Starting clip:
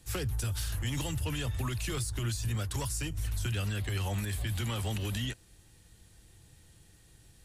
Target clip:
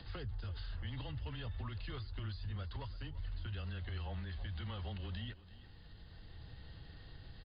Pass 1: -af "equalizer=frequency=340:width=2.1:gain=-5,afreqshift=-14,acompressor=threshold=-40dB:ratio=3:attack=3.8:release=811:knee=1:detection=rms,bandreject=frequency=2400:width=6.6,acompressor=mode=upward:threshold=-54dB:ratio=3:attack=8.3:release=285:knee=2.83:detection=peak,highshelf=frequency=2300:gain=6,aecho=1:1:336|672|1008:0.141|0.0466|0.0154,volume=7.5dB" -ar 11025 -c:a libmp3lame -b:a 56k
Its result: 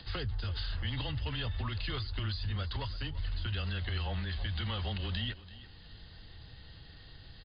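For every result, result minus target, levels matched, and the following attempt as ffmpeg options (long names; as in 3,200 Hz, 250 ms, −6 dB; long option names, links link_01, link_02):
downward compressor: peak gain reduction −6.5 dB; 4,000 Hz band +4.0 dB
-af "equalizer=frequency=340:width=2.1:gain=-5,afreqshift=-14,acompressor=threshold=-50dB:ratio=3:attack=3.8:release=811:knee=1:detection=rms,bandreject=frequency=2400:width=6.6,acompressor=mode=upward:threshold=-54dB:ratio=3:attack=8.3:release=285:knee=2.83:detection=peak,highshelf=frequency=2300:gain=6,aecho=1:1:336|672|1008:0.141|0.0466|0.0154,volume=7.5dB" -ar 11025 -c:a libmp3lame -b:a 56k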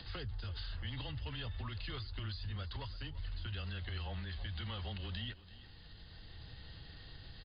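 4,000 Hz band +5.0 dB
-af "equalizer=frequency=340:width=2.1:gain=-5,afreqshift=-14,acompressor=threshold=-50dB:ratio=3:attack=3.8:release=811:knee=1:detection=rms,bandreject=frequency=2400:width=6.6,acompressor=mode=upward:threshold=-54dB:ratio=3:attack=8.3:release=285:knee=2.83:detection=peak,highshelf=frequency=2300:gain=-3,aecho=1:1:336|672|1008:0.141|0.0466|0.0154,volume=7.5dB" -ar 11025 -c:a libmp3lame -b:a 56k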